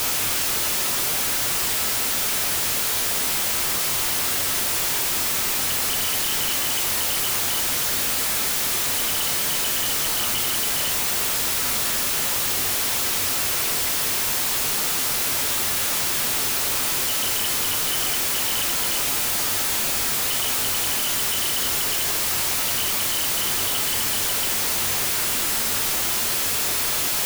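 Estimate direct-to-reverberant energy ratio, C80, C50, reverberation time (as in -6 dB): 5.0 dB, 15.5 dB, 11.5 dB, 0.55 s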